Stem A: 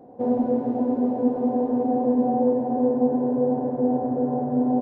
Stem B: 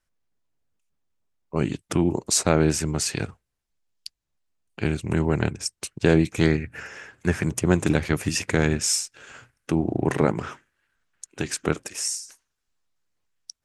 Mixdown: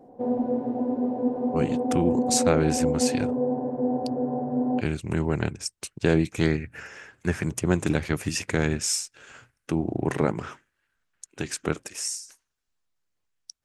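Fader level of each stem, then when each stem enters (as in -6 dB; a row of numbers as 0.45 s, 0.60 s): -3.5 dB, -3.0 dB; 0.00 s, 0.00 s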